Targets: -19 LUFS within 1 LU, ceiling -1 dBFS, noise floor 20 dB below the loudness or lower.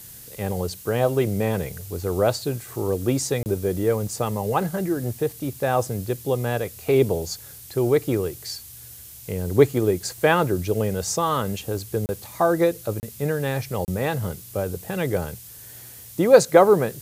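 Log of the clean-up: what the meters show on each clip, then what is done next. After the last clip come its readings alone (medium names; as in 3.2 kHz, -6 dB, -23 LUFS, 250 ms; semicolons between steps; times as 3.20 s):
dropouts 4; longest dropout 29 ms; noise floor -43 dBFS; noise floor target -44 dBFS; loudness -23.5 LUFS; peak level -2.0 dBFS; loudness target -19.0 LUFS
-> interpolate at 3.43/12.06/13.00/13.85 s, 29 ms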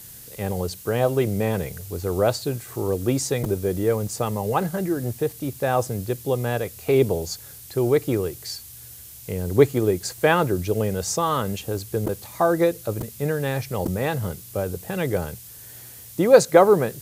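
dropouts 0; noise floor -42 dBFS; noise floor target -44 dBFS
-> noise reduction 6 dB, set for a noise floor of -42 dBFS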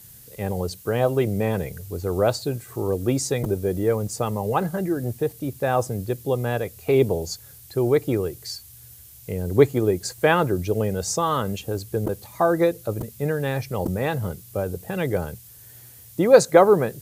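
noise floor -46 dBFS; loudness -23.5 LUFS; peak level -2.0 dBFS; loudness target -19.0 LUFS
-> trim +4.5 dB; peak limiter -1 dBFS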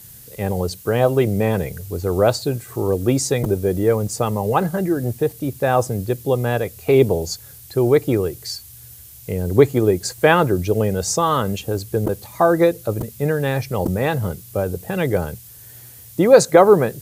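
loudness -19.0 LUFS; peak level -1.0 dBFS; noise floor -42 dBFS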